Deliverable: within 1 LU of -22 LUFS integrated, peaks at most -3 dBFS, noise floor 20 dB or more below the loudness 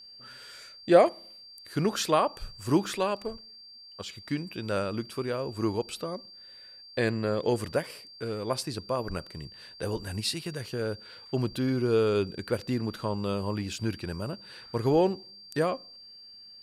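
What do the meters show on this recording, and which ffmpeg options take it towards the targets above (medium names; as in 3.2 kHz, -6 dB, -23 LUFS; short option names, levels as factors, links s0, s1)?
steady tone 4.7 kHz; tone level -47 dBFS; loudness -29.5 LUFS; peak level -7.5 dBFS; loudness target -22.0 LUFS
-> -af "bandreject=f=4700:w=30"
-af "volume=2.37,alimiter=limit=0.708:level=0:latency=1"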